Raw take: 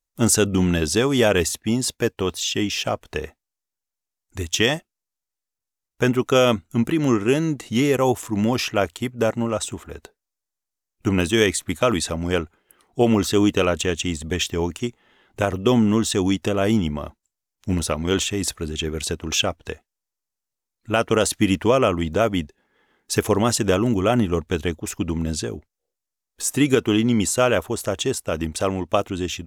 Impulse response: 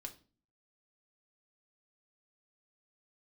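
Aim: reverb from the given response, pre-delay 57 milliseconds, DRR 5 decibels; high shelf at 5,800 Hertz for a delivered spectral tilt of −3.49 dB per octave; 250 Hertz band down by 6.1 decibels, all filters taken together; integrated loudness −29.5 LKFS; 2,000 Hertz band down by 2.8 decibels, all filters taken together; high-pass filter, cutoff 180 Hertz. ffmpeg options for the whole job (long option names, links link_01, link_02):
-filter_complex "[0:a]highpass=180,equalizer=frequency=250:width_type=o:gain=-6.5,equalizer=frequency=2000:width_type=o:gain=-5,highshelf=frequency=5800:gain=8.5,asplit=2[link_01][link_02];[1:a]atrim=start_sample=2205,adelay=57[link_03];[link_02][link_03]afir=irnorm=-1:irlink=0,volume=-0.5dB[link_04];[link_01][link_04]amix=inputs=2:normalize=0,volume=-8dB"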